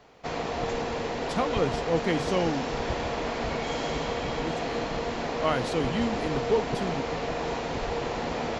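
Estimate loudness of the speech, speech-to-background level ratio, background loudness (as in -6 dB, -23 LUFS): -30.5 LUFS, 0.5 dB, -31.0 LUFS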